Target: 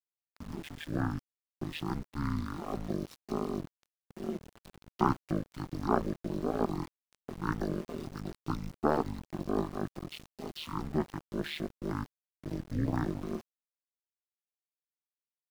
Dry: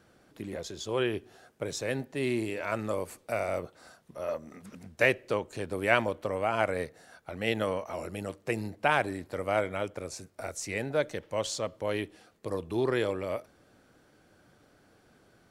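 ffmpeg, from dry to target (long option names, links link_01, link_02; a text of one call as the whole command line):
ffmpeg -i in.wav -af "asetrate=22050,aresample=44100,atempo=2,aeval=exprs='val(0)*gte(abs(val(0)),0.00708)':channel_layout=same,aeval=exprs='val(0)*sin(2*PI*77*n/s)':channel_layout=same" out.wav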